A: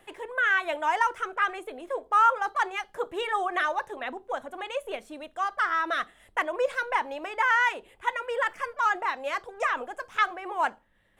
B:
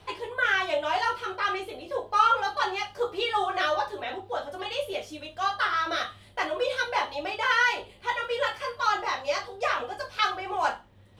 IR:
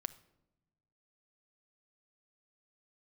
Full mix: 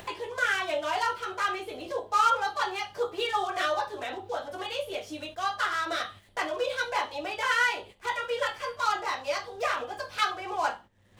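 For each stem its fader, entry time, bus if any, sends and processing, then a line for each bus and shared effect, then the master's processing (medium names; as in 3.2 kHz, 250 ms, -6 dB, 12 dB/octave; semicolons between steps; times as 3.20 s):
-11.5 dB, 0.00 s, no send, delay time shaken by noise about 4.6 kHz, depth 0.033 ms
-2.5 dB, 0.00 s, no send, gate -44 dBFS, range -14 dB; high-pass 69 Hz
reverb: none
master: upward compressor, threshold -31 dBFS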